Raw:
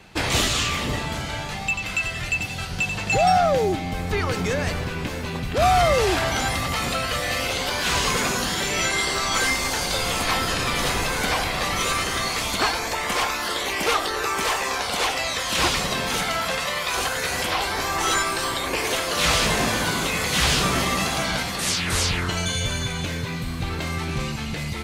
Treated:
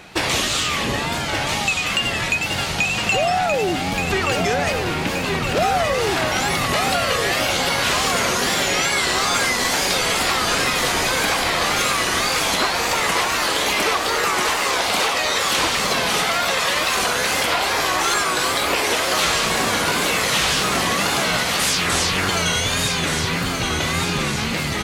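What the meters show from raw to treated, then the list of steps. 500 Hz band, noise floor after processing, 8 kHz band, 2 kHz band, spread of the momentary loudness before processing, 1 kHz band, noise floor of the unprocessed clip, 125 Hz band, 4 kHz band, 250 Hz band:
+3.0 dB, −23 dBFS, +4.5 dB, +4.5 dB, 8 LU, +3.5 dB, −30 dBFS, 0.0 dB, +4.5 dB, +3.0 dB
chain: low-shelf EQ 130 Hz −10.5 dB
downward compressor, threshold −25 dBFS, peak gain reduction 10 dB
tape wow and flutter 110 cents
repeating echo 1,175 ms, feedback 56%, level −6 dB
level +7.5 dB

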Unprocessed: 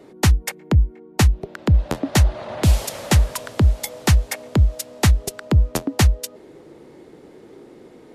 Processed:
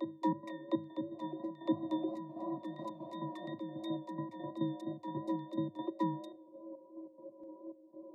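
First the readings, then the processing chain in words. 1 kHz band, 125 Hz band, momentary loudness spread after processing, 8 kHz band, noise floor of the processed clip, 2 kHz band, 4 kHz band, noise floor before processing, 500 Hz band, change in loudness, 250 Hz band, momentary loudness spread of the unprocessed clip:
−11.5 dB, −30.0 dB, 15 LU, below −40 dB, −59 dBFS, −28.0 dB, −26.0 dB, −46 dBFS, −12.5 dB, −19.5 dB, −10.5 dB, 5 LU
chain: adaptive Wiener filter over 25 samples
in parallel at −2 dB: brickwall limiter −15 dBFS, peak gain reduction 11 dB
on the sum: transient designer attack +3 dB, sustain +8 dB
downward compressor, threshold −18 dBFS, peak gain reduction 11.5 dB
resonances in every octave A, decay 0.55 s
gate pattern "x.x.xxx..xx.." 140 BPM −12 dB
pitch vibrato 2.9 Hz 32 cents
frequency shifter +100 Hz
phaser with its sweep stopped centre 310 Hz, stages 8
on a send: backwards echo 710 ms −6.5 dB
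on the sum: level +9.5 dB

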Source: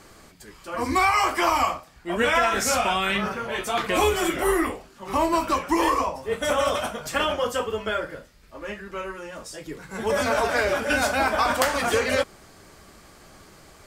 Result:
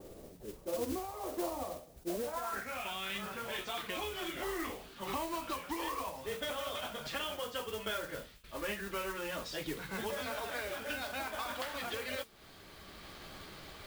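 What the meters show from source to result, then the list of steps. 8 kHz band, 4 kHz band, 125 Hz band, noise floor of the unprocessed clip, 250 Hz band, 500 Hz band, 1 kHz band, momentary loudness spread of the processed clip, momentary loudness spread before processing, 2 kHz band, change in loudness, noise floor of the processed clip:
−14.5 dB, −10.5 dB, −13.5 dB, −51 dBFS, −14.0 dB, −14.5 dB, −17.0 dB, 11 LU, 15 LU, −15.0 dB, −15.5 dB, −56 dBFS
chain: hum removal 225.3 Hz, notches 3
noise gate with hold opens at −43 dBFS
downward compressor 4 to 1, threshold −33 dBFS, peak gain reduction 14 dB
low-pass filter sweep 520 Hz → 3,700 Hz, 0:02.14–0:02.93
speech leveller within 4 dB 0.5 s
noise that follows the level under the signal 11 dB
on a send: delay with a high-pass on its return 617 ms, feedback 50%, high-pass 4,000 Hz, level −20 dB
on the sum: level that may rise only so fast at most 590 dB per second
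level −5.5 dB

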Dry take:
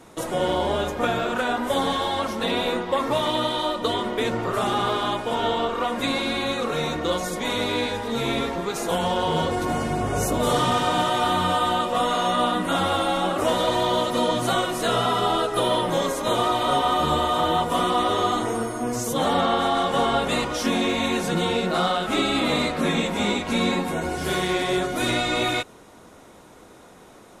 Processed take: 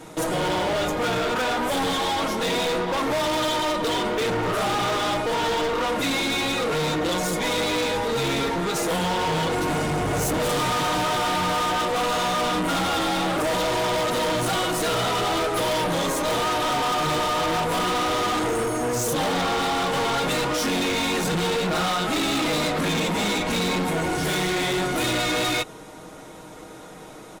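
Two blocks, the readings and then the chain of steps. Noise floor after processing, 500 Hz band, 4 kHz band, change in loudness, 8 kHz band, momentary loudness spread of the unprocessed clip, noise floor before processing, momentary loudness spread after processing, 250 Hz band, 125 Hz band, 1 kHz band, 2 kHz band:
−41 dBFS, −0.5 dB, +0.5 dB, 0.0 dB, +4.0 dB, 4 LU, −48 dBFS, 2 LU, −1.0 dB, +1.0 dB, −1.0 dB, +2.0 dB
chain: notch filter 1,100 Hz, Q 24
comb filter 6.4 ms, depth 51%
gain into a clipping stage and back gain 27.5 dB
level +5.5 dB

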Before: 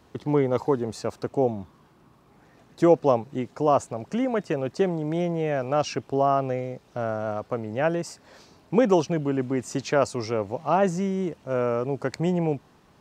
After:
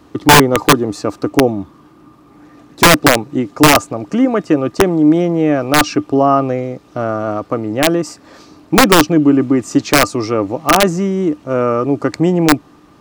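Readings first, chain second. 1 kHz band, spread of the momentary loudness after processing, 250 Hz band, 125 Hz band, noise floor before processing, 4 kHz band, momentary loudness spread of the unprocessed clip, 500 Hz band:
+12.5 dB, 11 LU, +13.5 dB, +10.0 dB, −58 dBFS, +23.0 dB, 10 LU, +8.0 dB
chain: hollow resonant body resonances 300/1,200 Hz, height 15 dB, ringing for 95 ms
wrap-around overflow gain 9.5 dB
level +8.5 dB

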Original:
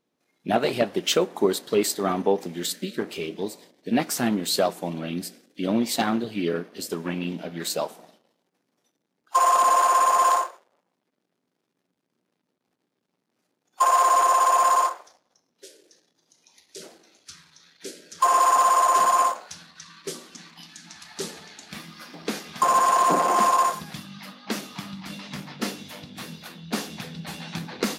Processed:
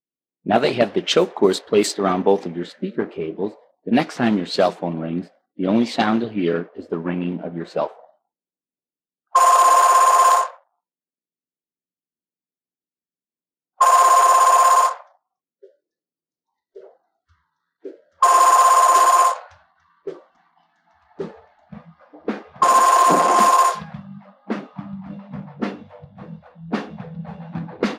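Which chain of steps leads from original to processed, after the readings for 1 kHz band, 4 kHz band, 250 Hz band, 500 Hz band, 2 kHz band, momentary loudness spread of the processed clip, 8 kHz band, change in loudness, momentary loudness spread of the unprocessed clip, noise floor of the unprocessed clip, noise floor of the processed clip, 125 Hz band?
+5.5 dB, +2.0 dB, +5.5 dB, +5.5 dB, +5.0 dB, 22 LU, +3.5 dB, +6.0 dB, 21 LU, −78 dBFS, below −85 dBFS, +5.5 dB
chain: low-pass that shuts in the quiet parts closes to 470 Hz, open at −16 dBFS
noise reduction from a noise print of the clip's start 27 dB
level +5.5 dB

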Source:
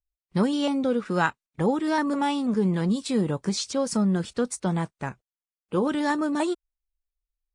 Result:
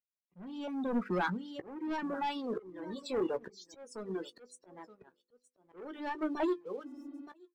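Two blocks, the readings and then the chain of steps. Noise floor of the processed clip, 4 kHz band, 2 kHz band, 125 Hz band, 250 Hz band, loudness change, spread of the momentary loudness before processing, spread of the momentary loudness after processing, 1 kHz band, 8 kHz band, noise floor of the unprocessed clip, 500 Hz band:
below −85 dBFS, −14.0 dB, −10.5 dB, −19.5 dB, −13.0 dB, −11.5 dB, 5 LU, 18 LU, −10.0 dB, −22.0 dB, below −85 dBFS, −10.0 dB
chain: high-pass filter sweep 190 Hz → 380 Hz, 0:00.58–0:02.42
repeating echo 921 ms, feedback 16%, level −14 dB
soft clipping −18.5 dBFS, distortion −12 dB
high-shelf EQ 4,600 Hz −3.5 dB
spectral peaks only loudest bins 64
mains-hum notches 50/100/150/200/250/300/350/400/450/500 Hz
reverb reduction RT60 1.6 s
leveller curve on the samples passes 1
hard clipping −19 dBFS, distortion −28 dB
volume swells 718 ms
healed spectral selection 0:06.85–0:07.19, 230–5,000 Hz after
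double-tracking delay 16 ms −12.5 dB
level −7 dB

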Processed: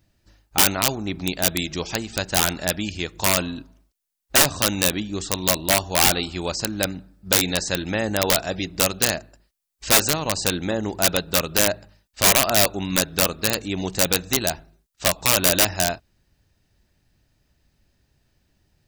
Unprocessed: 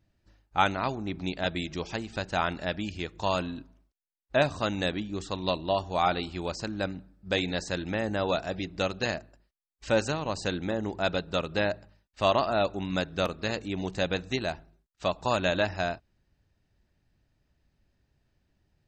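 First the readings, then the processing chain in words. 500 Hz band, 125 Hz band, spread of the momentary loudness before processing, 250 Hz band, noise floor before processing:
+3.5 dB, +5.5 dB, 8 LU, +5.5 dB, −77 dBFS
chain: wrap-around overflow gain 18.5 dB
high-shelf EQ 4,300 Hz +10 dB
level +5.5 dB

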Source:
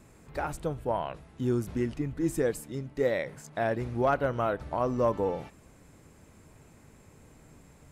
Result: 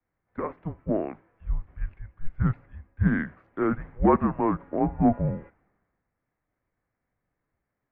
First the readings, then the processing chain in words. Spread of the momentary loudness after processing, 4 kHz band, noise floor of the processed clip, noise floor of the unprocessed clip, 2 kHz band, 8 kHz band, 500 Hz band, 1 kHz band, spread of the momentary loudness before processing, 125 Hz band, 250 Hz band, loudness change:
17 LU, below −15 dB, −83 dBFS, −57 dBFS, 0.0 dB, below −30 dB, −2.0 dB, +2.0 dB, 10 LU, +5.5 dB, +6.5 dB, +3.5 dB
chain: single-sideband voice off tune −330 Hz 360–2,400 Hz
multiband upward and downward expander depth 70%
level +3 dB

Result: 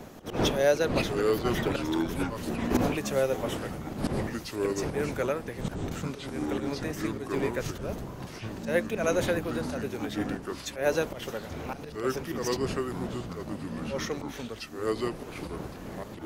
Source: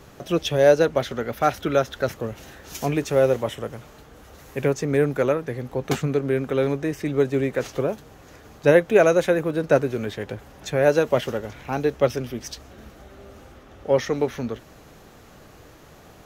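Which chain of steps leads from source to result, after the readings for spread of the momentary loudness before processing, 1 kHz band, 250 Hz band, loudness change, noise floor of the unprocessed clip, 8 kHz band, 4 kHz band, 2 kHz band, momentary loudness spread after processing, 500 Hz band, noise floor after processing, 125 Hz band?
17 LU, −6.0 dB, −3.5 dB, −8.5 dB, −48 dBFS, −1.5 dB, −2.0 dB, −5.5 dB, 11 LU, −8.5 dB, −43 dBFS, −6.0 dB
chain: wind on the microphone 350 Hz −24 dBFS
volume swells 142 ms
delay with pitch and tempo change per echo 375 ms, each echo −5 semitones, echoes 3
spectral tilt +2 dB per octave
on a send: backwards echo 83 ms −24 dB
on the sum: level −6.5 dB

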